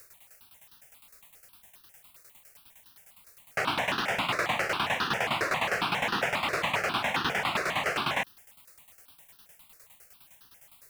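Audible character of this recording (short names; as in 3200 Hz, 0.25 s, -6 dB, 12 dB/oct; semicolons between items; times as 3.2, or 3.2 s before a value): a quantiser's noise floor 10-bit, dither triangular; tremolo saw down 9.8 Hz, depth 80%; notches that jump at a steady rate 7.4 Hz 860–2200 Hz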